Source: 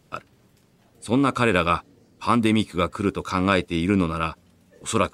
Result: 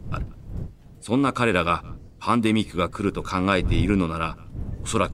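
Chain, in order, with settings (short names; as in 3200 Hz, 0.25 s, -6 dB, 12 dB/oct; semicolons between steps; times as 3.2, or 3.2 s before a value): wind noise 110 Hz -31 dBFS; speakerphone echo 0.17 s, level -26 dB; gain -1 dB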